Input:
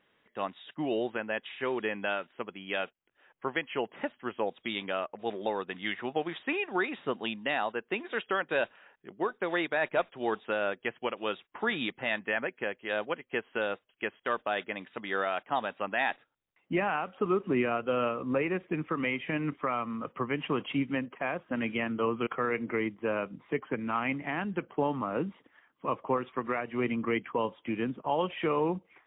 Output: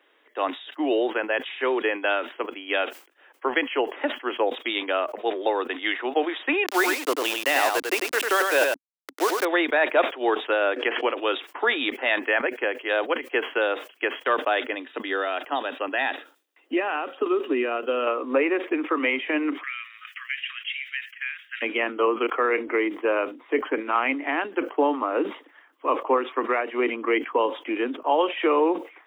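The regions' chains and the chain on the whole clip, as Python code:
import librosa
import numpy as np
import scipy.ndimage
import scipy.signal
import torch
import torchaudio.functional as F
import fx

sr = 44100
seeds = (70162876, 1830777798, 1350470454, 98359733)

y = fx.chain(x, sr, fx.low_shelf(hz=170.0, db=-9.5),
    fx.quant_dither(seeds[0], bits=6, dither='none'),
    fx.echo_single(ms=97, db=-4.0), at=(6.66, 9.45))
y = fx.chain(y, sr, fx.lowpass(hz=3500.0, slope=12),
    fx.pre_swell(db_per_s=68.0), at=(10.76, 11.18))
y = fx.chain(y, sr, fx.peak_eq(hz=950.0, db=-6.5, octaves=2.1),
    fx.notch(hz=2200.0, q=11.0),
    fx.band_squash(depth_pct=40), at=(14.69, 18.07))
y = fx.chain(y, sr, fx.steep_highpass(hz=1700.0, slope=48),
    fx.band_squash(depth_pct=70), at=(19.63, 21.62))
y = scipy.signal.sosfilt(scipy.signal.butter(12, 270.0, 'highpass', fs=sr, output='sos'), y)
y = fx.sustainer(y, sr, db_per_s=150.0)
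y = y * 10.0 ** (8.0 / 20.0)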